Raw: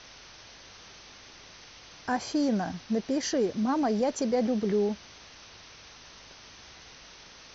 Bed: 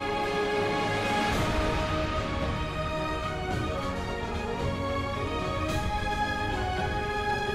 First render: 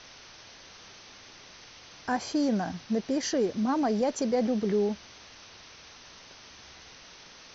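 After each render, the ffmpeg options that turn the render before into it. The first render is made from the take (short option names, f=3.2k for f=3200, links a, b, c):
-af "bandreject=f=50:t=h:w=4,bandreject=f=100:t=h:w=4,bandreject=f=150:t=h:w=4"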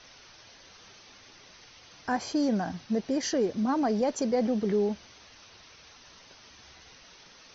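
-af "afftdn=nr=6:nf=-51"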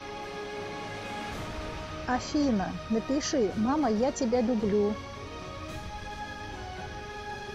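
-filter_complex "[1:a]volume=-10dB[a];[0:a][a]amix=inputs=2:normalize=0"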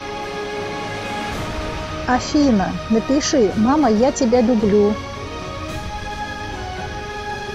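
-af "volume=11.5dB"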